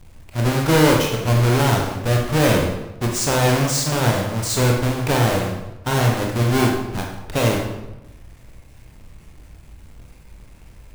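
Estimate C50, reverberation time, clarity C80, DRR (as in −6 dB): 3.5 dB, 0.95 s, 6.5 dB, 0.0 dB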